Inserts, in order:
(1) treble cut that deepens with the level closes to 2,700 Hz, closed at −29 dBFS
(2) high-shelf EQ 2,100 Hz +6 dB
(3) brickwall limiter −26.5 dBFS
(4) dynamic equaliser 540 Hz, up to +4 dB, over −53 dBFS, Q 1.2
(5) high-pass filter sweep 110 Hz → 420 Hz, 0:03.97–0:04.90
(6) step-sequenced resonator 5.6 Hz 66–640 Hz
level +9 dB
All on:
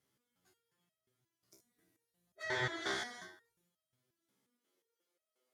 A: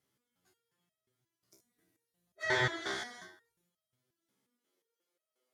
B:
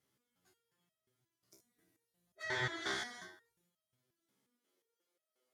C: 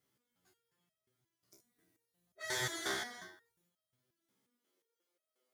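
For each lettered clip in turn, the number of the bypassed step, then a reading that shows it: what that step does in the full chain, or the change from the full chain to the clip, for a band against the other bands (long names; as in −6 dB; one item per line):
3, average gain reduction 2.0 dB
4, 500 Hz band −2.5 dB
1, 8 kHz band +10.0 dB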